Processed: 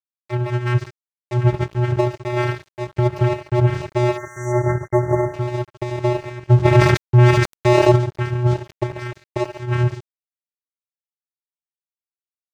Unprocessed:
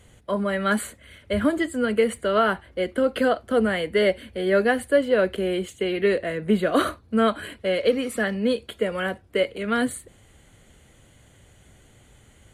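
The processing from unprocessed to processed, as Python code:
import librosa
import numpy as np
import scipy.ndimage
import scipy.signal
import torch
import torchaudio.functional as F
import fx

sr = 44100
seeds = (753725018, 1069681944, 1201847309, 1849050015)

y = fx.spec_paint(x, sr, seeds[0], shape='rise', start_s=3.95, length_s=0.57, low_hz=680.0, high_hz=4000.0, level_db=-27.0)
y = fx.echo_multitap(y, sr, ms=(72, 141, 162), db=(-11.5, -11.5, -17.5))
y = fx.vocoder(y, sr, bands=4, carrier='square', carrier_hz=122.0)
y = y + 10.0 ** (-16.0 / 20.0) * np.pad(y, (int(87 * sr / 1000.0), 0))[:len(y)]
y = np.sign(y) * np.maximum(np.abs(y) - 10.0 ** (-31.0 / 20.0), 0.0)
y = fx.brickwall_bandstop(y, sr, low_hz=2100.0, high_hz=5700.0, at=(4.16, 5.33), fade=0.02)
y = fx.env_flatten(y, sr, amount_pct=70, at=(6.64, 7.96), fade=0.02)
y = y * librosa.db_to_amplitude(6.0)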